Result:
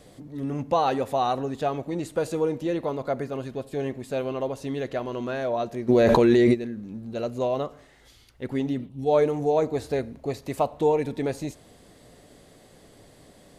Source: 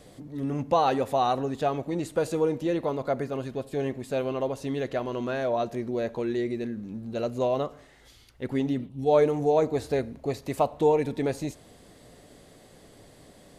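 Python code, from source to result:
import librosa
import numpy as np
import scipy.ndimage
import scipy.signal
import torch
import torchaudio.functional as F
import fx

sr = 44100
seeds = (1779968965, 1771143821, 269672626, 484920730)

y = fx.env_flatten(x, sr, amount_pct=100, at=(5.88, 6.53), fade=0.02)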